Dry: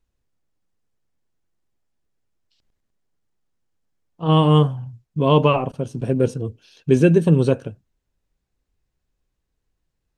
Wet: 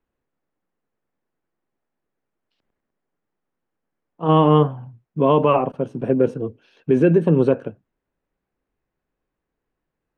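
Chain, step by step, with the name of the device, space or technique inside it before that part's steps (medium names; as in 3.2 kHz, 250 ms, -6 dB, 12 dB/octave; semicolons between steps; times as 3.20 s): DJ mixer with the lows and highs turned down (three-band isolator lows -14 dB, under 180 Hz, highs -20 dB, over 2.4 kHz; peak limiter -10 dBFS, peak gain reduction 5.5 dB); trim +4 dB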